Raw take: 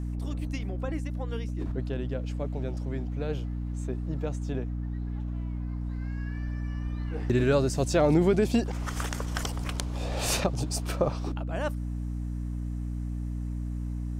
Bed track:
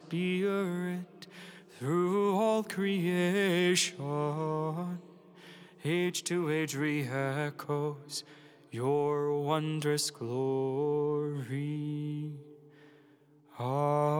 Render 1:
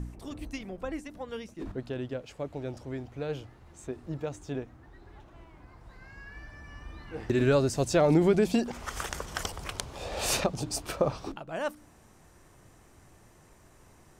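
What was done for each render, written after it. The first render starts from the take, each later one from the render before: de-hum 60 Hz, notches 5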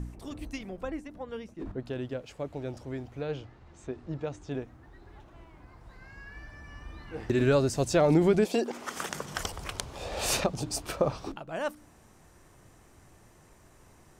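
0.90–1.86 s: treble shelf 2.7 kHz -9 dB; 3.21–4.51 s: low-pass 5.7 kHz; 8.44–9.34 s: resonant high-pass 470 Hz -> 130 Hz, resonance Q 1.9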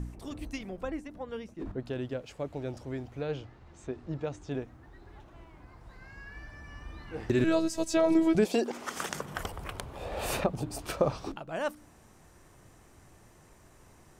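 7.44–8.35 s: robot voice 324 Hz; 9.21–10.79 s: peaking EQ 5.8 kHz -12 dB 1.6 oct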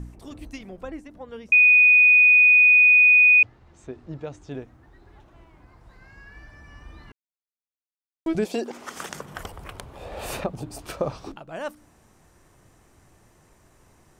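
1.52–3.43 s: bleep 2.48 kHz -11 dBFS; 7.12–8.26 s: mute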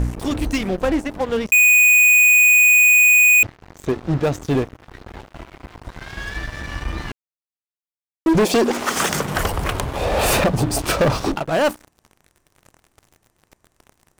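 waveshaping leveller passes 5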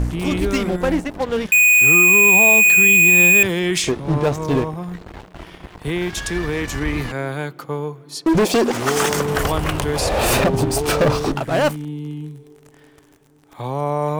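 add bed track +7 dB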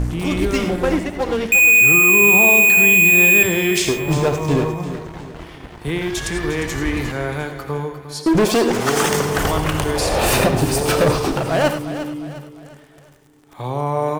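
feedback delay 353 ms, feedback 41%, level -12 dB; gated-style reverb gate 120 ms rising, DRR 7.5 dB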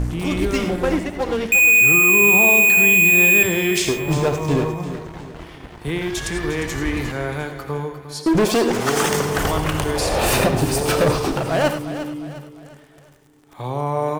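trim -1.5 dB

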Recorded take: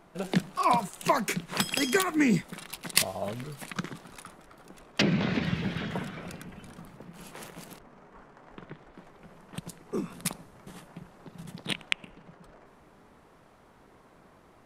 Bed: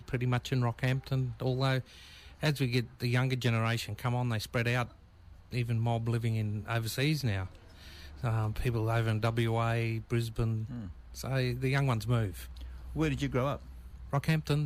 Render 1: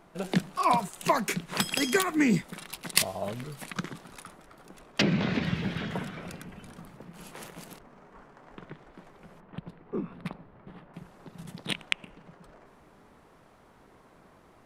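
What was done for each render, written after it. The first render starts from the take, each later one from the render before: 9.40–10.94 s: distance through air 440 m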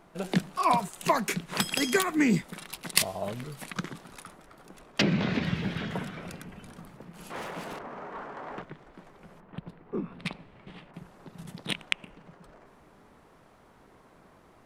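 7.30–8.62 s: overdrive pedal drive 26 dB, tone 1.2 kHz, clips at -25.5 dBFS; 10.19–10.91 s: high-order bell 4.4 kHz +11.5 dB 2.4 oct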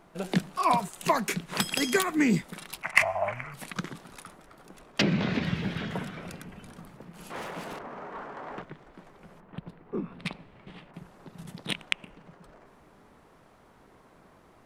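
2.82–3.54 s: FFT filter 110 Hz 0 dB, 190 Hz -11 dB, 450 Hz -12 dB, 650 Hz +7 dB, 1.6 kHz +9 dB, 2.3 kHz +13 dB, 3.7 kHz -17 dB, 6.1 kHz -7 dB, 12 kHz -17 dB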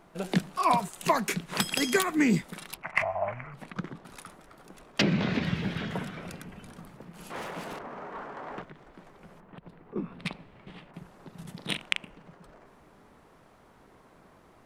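2.74–4.05 s: low-pass 1.2 kHz 6 dB/octave; 8.69–9.96 s: compression, threshold -42 dBFS; 11.56–12.07 s: doubling 40 ms -8 dB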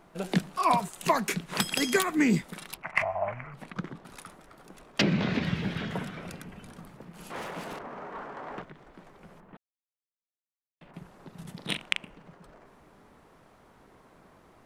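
9.57–10.81 s: mute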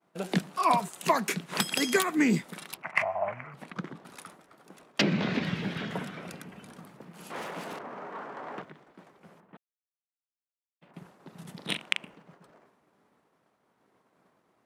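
expander -48 dBFS; high-pass 150 Hz 12 dB/octave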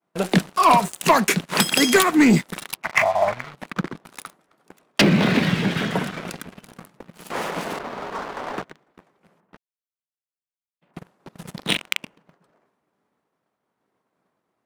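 waveshaping leveller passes 3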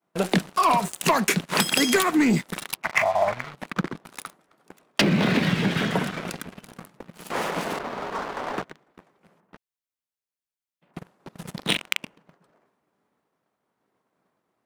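compression, threshold -17 dBFS, peak gain reduction 6.5 dB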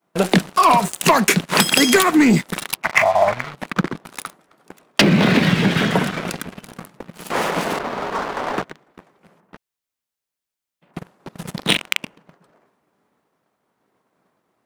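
trim +6.5 dB; peak limiter -2 dBFS, peak gain reduction 2 dB

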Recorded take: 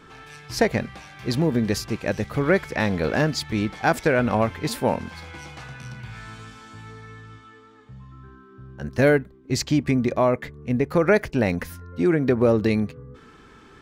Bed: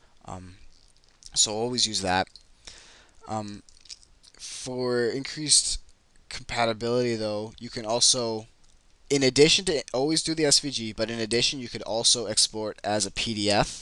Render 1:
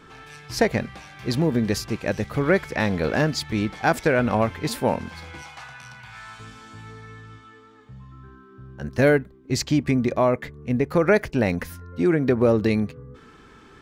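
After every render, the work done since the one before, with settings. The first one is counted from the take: 5.42–6.40 s: resonant low shelf 570 Hz -10.5 dB, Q 1.5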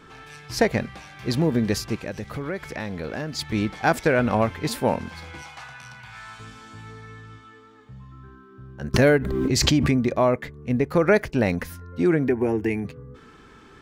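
1.95–3.39 s: compression 2.5:1, threshold -30 dBFS; 8.94–9.96 s: swell ahead of each attack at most 26 dB/s; 12.28–12.85 s: static phaser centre 820 Hz, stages 8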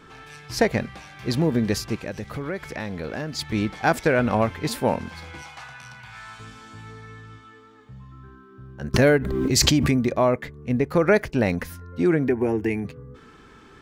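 9.46–10.09 s: treble shelf 5.4 kHz -> 9.1 kHz +8 dB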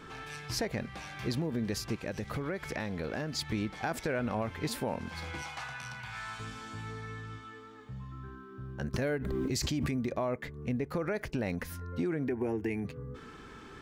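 peak limiter -14 dBFS, peak gain reduction 10.5 dB; compression 2.5:1, threshold -34 dBFS, peak gain reduction 10.5 dB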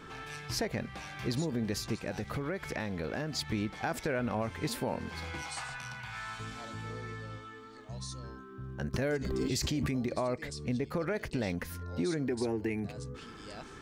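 add bed -25.5 dB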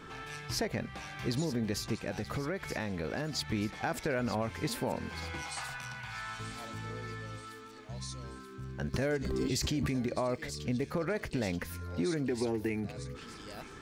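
feedback echo behind a high-pass 931 ms, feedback 63%, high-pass 2.3 kHz, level -12 dB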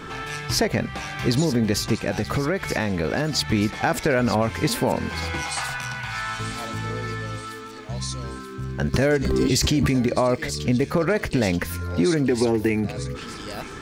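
trim +12 dB

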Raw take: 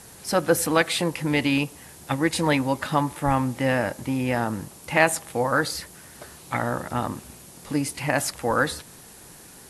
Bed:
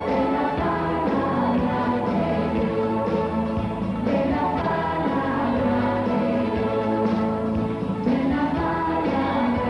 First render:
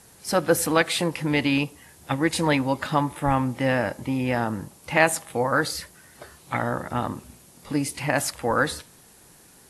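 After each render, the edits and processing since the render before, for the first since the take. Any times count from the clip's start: noise print and reduce 6 dB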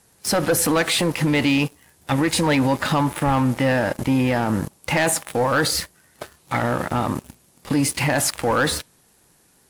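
waveshaping leveller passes 3; peak limiter -12.5 dBFS, peak gain reduction 9.5 dB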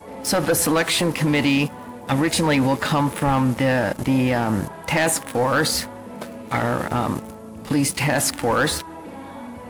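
add bed -14 dB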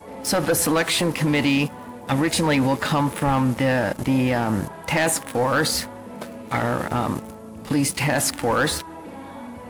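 trim -1 dB

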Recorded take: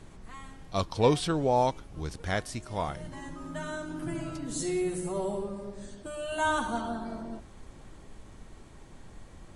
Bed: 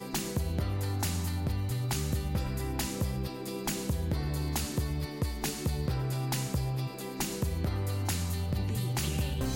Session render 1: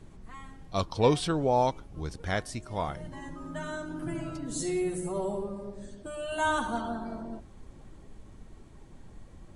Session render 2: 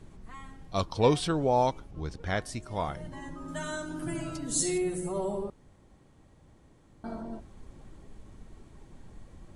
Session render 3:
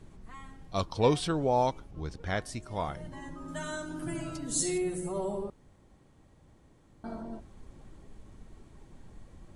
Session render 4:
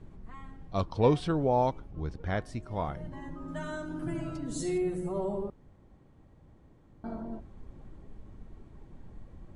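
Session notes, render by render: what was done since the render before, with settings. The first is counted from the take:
noise reduction 6 dB, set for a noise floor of -51 dBFS
1.91–2.42 s: distance through air 60 m; 3.48–4.78 s: treble shelf 3.7 kHz +10 dB; 5.50–7.04 s: room tone
trim -1.5 dB
low-pass 1.9 kHz 6 dB/octave; bass shelf 320 Hz +3 dB

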